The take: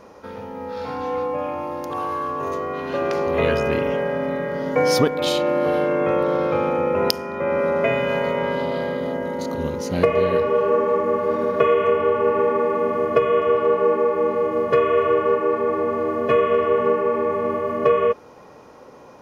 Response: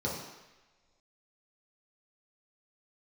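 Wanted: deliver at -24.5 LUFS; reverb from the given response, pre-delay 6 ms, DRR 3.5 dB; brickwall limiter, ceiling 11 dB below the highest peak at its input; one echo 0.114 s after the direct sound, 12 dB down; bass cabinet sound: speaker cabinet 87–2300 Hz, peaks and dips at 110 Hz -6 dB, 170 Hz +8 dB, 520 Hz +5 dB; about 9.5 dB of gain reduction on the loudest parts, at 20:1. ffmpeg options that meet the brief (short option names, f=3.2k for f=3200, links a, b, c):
-filter_complex "[0:a]acompressor=threshold=-21dB:ratio=20,alimiter=limit=-19dB:level=0:latency=1,aecho=1:1:114:0.251,asplit=2[a][b];[1:a]atrim=start_sample=2205,adelay=6[c];[b][c]afir=irnorm=-1:irlink=0,volume=-10dB[d];[a][d]amix=inputs=2:normalize=0,highpass=f=87:w=0.5412,highpass=f=87:w=1.3066,equalizer=f=110:t=q:w=4:g=-6,equalizer=f=170:t=q:w=4:g=8,equalizer=f=520:t=q:w=4:g=5,lowpass=f=2.3k:w=0.5412,lowpass=f=2.3k:w=1.3066,volume=-2dB"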